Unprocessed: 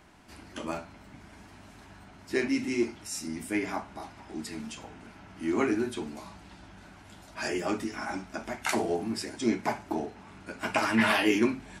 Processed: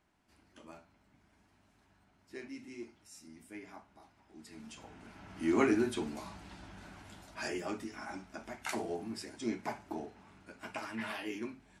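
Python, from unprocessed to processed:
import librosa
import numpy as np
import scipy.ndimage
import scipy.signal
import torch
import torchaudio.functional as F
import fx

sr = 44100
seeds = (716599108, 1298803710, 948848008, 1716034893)

y = fx.gain(x, sr, db=fx.line((4.31, -18.0), (4.72, -9.0), (5.35, -1.0), (7.0, -1.0), (7.74, -9.0), (10.25, -9.0), (10.93, -16.0)))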